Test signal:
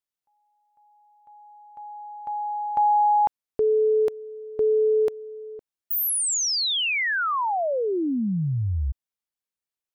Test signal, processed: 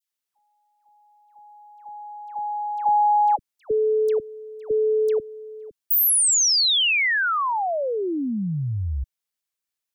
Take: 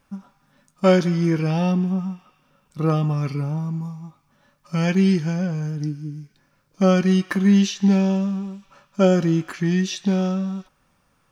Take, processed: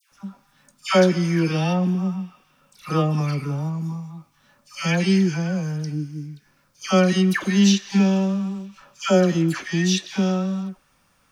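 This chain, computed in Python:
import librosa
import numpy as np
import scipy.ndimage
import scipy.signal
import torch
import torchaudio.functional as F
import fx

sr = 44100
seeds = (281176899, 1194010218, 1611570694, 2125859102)

y = fx.tilt_shelf(x, sr, db=-3.5, hz=1300.0)
y = fx.dispersion(y, sr, late='lows', ms=120.0, hz=1300.0)
y = F.gain(torch.from_numpy(y), 2.5).numpy()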